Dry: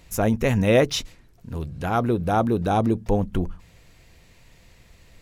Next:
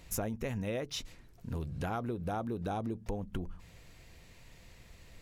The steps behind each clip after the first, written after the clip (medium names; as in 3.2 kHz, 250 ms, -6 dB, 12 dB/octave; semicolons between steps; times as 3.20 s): compression 16:1, threshold -29 dBFS, peak gain reduction 17.5 dB; trim -3 dB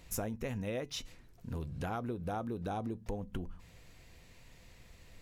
feedback comb 250 Hz, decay 0.24 s, harmonics all, mix 40%; trim +2 dB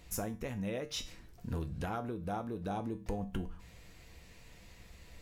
feedback comb 65 Hz, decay 0.33 s, harmonics odd, mix 70%; gain riding within 4 dB 0.5 s; trim +8 dB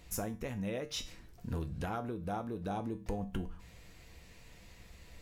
no audible change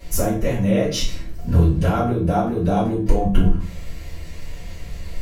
reverberation RT60 0.45 s, pre-delay 3 ms, DRR -12 dB; trim +3.5 dB